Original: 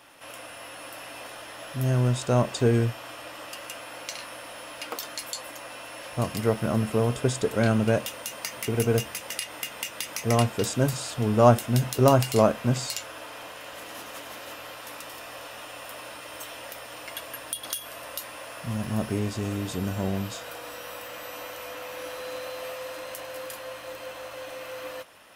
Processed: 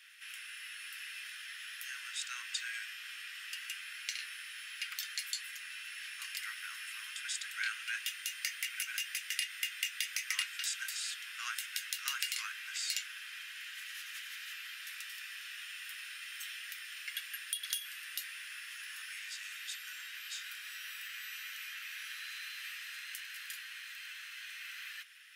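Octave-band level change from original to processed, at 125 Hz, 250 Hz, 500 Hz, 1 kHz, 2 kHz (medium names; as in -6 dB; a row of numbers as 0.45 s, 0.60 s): under -40 dB, under -40 dB, under -40 dB, -21.5 dB, -1.5 dB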